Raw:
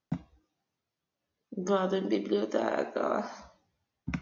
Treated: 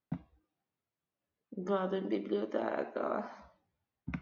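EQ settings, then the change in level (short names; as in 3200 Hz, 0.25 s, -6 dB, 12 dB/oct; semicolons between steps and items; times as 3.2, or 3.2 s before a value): LPF 3000 Hz 12 dB/oct; -5.0 dB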